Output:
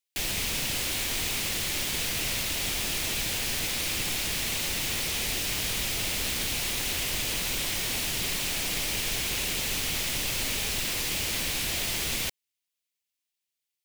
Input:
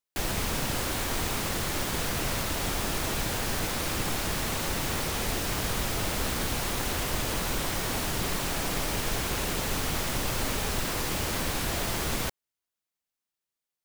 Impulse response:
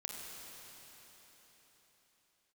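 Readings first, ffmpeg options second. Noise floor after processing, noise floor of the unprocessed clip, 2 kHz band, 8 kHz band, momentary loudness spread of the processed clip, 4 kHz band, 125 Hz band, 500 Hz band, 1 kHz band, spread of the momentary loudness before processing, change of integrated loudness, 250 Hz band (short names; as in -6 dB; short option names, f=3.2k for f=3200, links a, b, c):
under -85 dBFS, under -85 dBFS, +1.5 dB, +3.5 dB, 0 LU, +4.5 dB, -5.5 dB, -6.0 dB, -7.0 dB, 0 LU, +2.0 dB, -5.5 dB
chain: -af "highshelf=f=1.8k:t=q:w=1.5:g=8.5,volume=-5.5dB"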